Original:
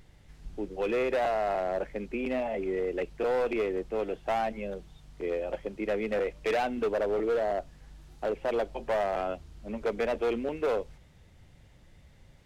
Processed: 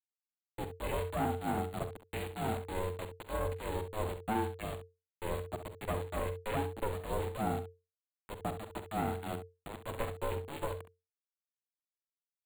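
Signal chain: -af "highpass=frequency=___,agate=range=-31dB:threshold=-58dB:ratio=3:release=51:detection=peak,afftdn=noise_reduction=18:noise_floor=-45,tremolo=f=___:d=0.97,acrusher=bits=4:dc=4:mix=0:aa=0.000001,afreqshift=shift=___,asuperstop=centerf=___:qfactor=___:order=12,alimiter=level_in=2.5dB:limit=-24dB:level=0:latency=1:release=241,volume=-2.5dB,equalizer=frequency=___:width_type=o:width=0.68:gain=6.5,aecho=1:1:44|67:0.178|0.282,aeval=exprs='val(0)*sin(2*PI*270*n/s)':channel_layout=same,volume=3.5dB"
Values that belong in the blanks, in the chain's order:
350, 3.2, -180, 5500, 1.8, 550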